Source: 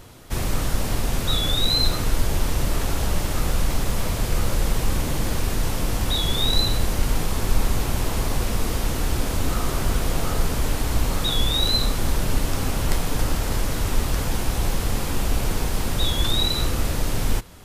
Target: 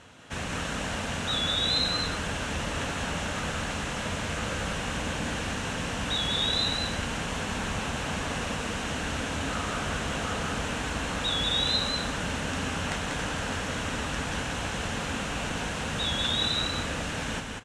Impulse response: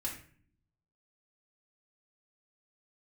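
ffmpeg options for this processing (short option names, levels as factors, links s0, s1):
-filter_complex "[0:a]highpass=100,equalizer=f=120:t=q:w=4:g=-8,equalizer=f=360:t=q:w=4:g=-8,equalizer=f=1600:t=q:w=4:g=7,equalizer=f=2800:t=q:w=4:g=6,equalizer=f=4800:t=q:w=4:g=-7,lowpass=f=7900:w=0.5412,lowpass=f=7900:w=1.3066,asplit=2[s0][s1];[s1]aecho=0:1:191:0.668[s2];[s0][s2]amix=inputs=2:normalize=0,volume=0.631"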